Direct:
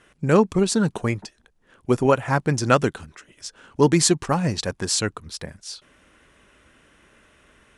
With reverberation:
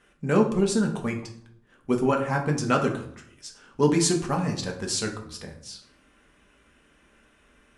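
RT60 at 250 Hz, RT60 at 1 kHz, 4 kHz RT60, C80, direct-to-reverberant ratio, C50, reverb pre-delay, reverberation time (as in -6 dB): 0.85 s, 0.65 s, 0.40 s, 13.0 dB, 1.0 dB, 9.0 dB, 4 ms, 0.65 s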